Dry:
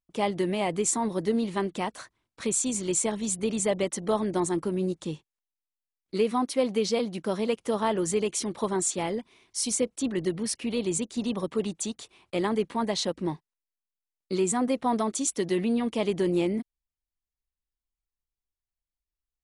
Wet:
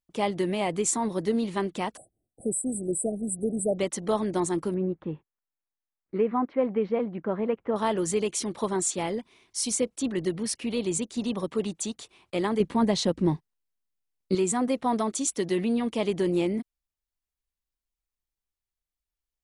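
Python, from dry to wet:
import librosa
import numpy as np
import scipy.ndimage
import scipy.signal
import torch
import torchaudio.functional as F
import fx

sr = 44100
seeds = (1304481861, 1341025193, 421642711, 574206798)

y = fx.brickwall_bandstop(x, sr, low_hz=800.0, high_hz=7700.0, at=(1.97, 3.78))
y = fx.lowpass(y, sr, hz=2000.0, slope=24, at=(4.74, 7.76))
y = fx.low_shelf(y, sr, hz=330.0, db=10.5, at=(12.6, 14.35))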